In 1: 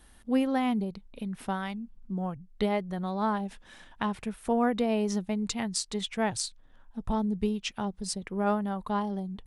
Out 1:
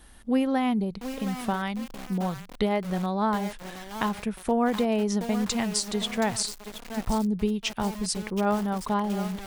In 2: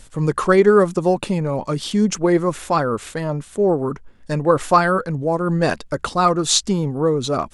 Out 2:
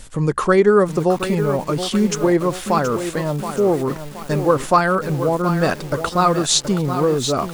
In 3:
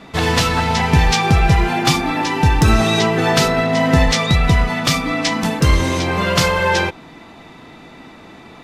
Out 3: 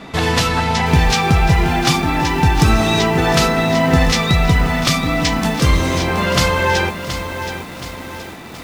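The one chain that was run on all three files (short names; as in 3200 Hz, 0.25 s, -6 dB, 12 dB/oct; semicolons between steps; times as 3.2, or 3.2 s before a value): in parallel at +0.5 dB: compressor 20:1, threshold -28 dBFS; on the sum: lo-fi delay 0.724 s, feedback 55%, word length 5-bit, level -9 dB; gain -1.5 dB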